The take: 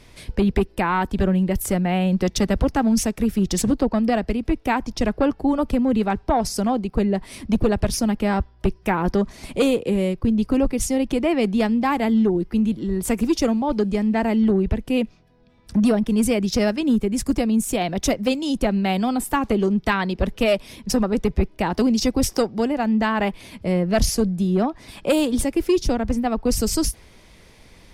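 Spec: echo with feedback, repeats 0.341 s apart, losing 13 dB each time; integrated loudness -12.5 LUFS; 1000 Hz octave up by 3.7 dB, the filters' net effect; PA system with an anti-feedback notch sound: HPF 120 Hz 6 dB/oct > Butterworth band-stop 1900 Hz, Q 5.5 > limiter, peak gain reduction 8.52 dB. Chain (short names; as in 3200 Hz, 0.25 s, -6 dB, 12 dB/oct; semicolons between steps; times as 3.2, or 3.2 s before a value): HPF 120 Hz 6 dB/oct; Butterworth band-stop 1900 Hz, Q 5.5; bell 1000 Hz +5 dB; feedback echo 0.341 s, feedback 22%, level -13 dB; gain +11 dB; limiter -3 dBFS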